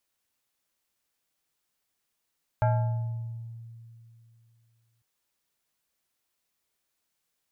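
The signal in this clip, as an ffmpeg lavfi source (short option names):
-f lavfi -i "aevalsrc='0.112*pow(10,-3*t/2.77)*sin(2*PI*115*t+1*pow(10,-3*t/1.48)*sin(2*PI*6.48*115*t))':d=2.4:s=44100"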